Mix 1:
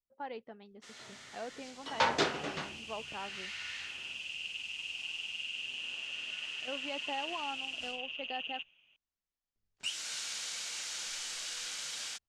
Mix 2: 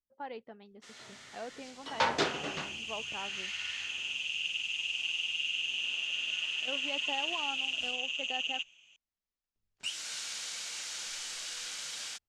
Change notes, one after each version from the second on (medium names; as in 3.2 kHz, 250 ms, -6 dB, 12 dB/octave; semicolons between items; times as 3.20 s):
second sound: remove distance through air 370 m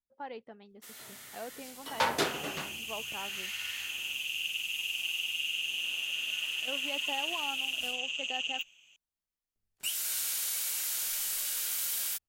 master: remove low-pass 6.7 kHz 24 dB/octave